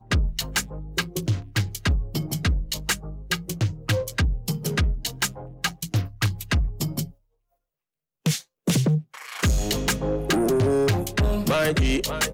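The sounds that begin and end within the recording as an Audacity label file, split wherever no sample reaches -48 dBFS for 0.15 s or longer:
8.250000	8.440000	sound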